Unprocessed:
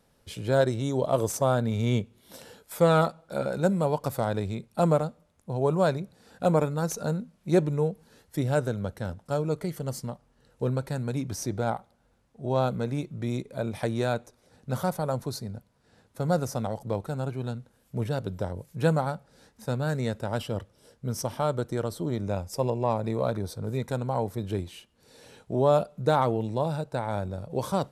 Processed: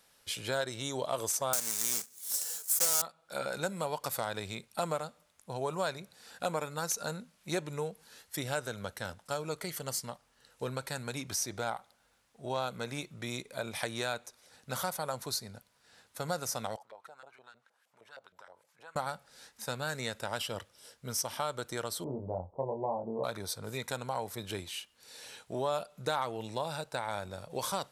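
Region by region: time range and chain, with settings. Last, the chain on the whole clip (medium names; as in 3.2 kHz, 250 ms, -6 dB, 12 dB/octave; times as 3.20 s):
1.53–3.02 s: block-companded coder 3-bit + high-pass 200 Hz + resonant high shelf 4.8 kHz +13 dB, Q 1.5
16.76–18.96 s: treble shelf 3.4 kHz +11.5 dB + compression 3:1, threshold -39 dBFS + LFO band-pass saw up 6.4 Hz 520–1900 Hz
22.04–23.24 s: steep low-pass 920 Hz 48 dB/octave + doubling 22 ms -3 dB
whole clip: tilt shelf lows -10 dB, about 710 Hz; compression 2.5:1, threshold -29 dBFS; trim -2.5 dB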